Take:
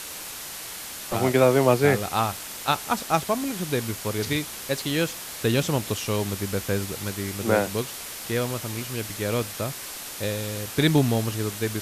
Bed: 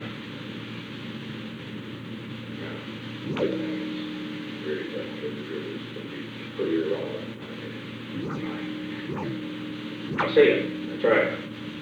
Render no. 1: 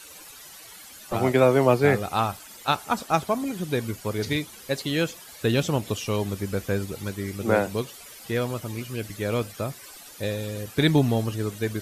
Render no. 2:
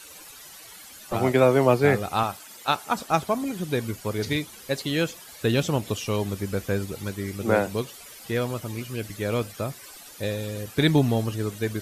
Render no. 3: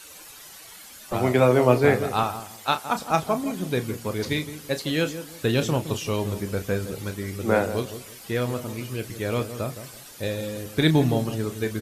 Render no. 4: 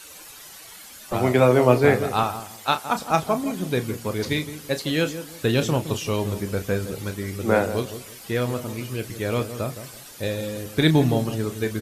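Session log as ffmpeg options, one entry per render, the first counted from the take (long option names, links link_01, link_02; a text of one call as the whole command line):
ffmpeg -i in.wav -af "afftdn=noise_reduction=13:noise_floor=-37" out.wav
ffmpeg -i in.wav -filter_complex "[0:a]asettb=1/sr,asplit=3[link_01][link_02][link_03];[link_01]atrim=end=2.234[link_04];[link_02]atrim=start=2.23:end=2.96,asetpts=PTS-STARTPTS,afade=type=in:duration=0.004:curve=qsin,afade=type=out:start_time=0.726:duration=0.004:curve=qsin,highpass=frequency=180:poles=1[link_05];[link_03]atrim=start=2.956[link_06];[link_04][link_05]acrossfade=duration=0.004:curve1=hsin:curve2=qsin[link_07];[link_07][link_06]acrossfade=duration=0.004:curve1=qsin:curve2=hsin" out.wav
ffmpeg -i in.wav -filter_complex "[0:a]asplit=2[link_01][link_02];[link_02]adelay=32,volume=-10.5dB[link_03];[link_01][link_03]amix=inputs=2:normalize=0,asplit=2[link_04][link_05];[link_05]adelay=165,lowpass=frequency=900:poles=1,volume=-10dB,asplit=2[link_06][link_07];[link_07]adelay=165,lowpass=frequency=900:poles=1,volume=0.3,asplit=2[link_08][link_09];[link_09]adelay=165,lowpass=frequency=900:poles=1,volume=0.3[link_10];[link_04][link_06][link_08][link_10]amix=inputs=4:normalize=0" out.wav
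ffmpeg -i in.wav -af "volume=1.5dB" out.wav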